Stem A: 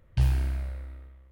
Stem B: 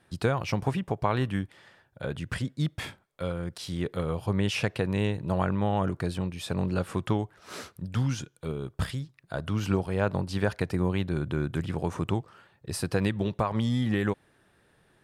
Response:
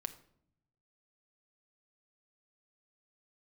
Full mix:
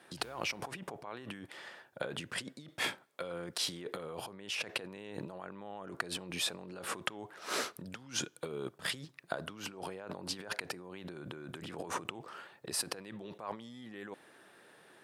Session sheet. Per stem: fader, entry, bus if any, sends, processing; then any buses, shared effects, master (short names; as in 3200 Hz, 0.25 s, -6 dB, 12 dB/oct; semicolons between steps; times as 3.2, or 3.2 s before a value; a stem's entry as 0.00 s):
-17.5 dB, 0.00 s, no send, dry
-2.0 dB, 0.00 s, send -17 dB, negative-ratio compressor -37 dBFS, ratio -1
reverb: on, RT60 0.65 s, pre-delay 6 ms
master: HPF 300 Hz 12 dB/oct